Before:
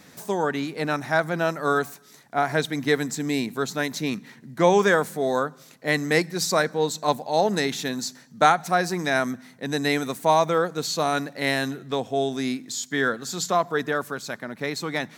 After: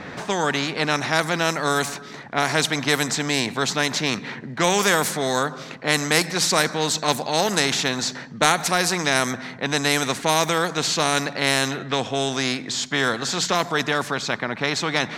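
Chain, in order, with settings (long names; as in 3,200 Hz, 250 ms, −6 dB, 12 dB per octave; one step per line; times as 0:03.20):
low-pass that shuts in the quiet parts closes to 2,300 Hz, open at −15.5 dBFS
every bin compressed towards the loudest bin 2 to 1
level +2.5 dB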